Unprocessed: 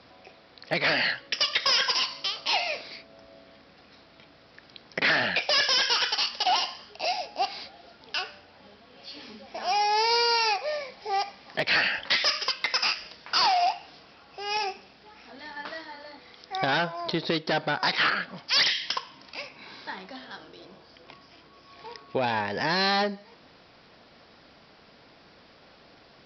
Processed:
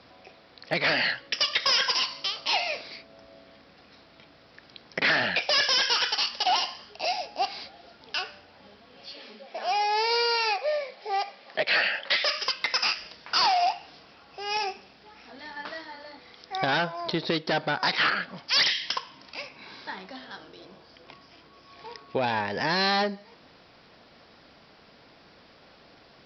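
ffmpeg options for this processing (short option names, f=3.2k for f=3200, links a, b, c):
-filter_complex "[0:a]asettb=1/sr,asplit=3[a][b][c];[a]atrim=end=9.134[d];[b]atrim=start=9.13:end=12.38,asetpts=PTS-STARTPTS,afade=t=in:d=0.004:c=qsin,afade=t=out:st=3.246:d=0.004:c=qsin,highpass=250,equalizer=f=290:t=q:w=4:g=-6,equalizer=f=580:t=q:w=4:g=5,equalizer=f=970:t=q:w=4:g=-4,lowpass=f=5k:w=0.5412,lowpass=f=5k:w=1.3066[e];[c]atrim=start=12.376[f];[d][e]acrossfade=d=0.004:c1=hsin:c2=qsin[g];[g][f]acrossfade=d=0.004:c1=qsin:c2=hsin"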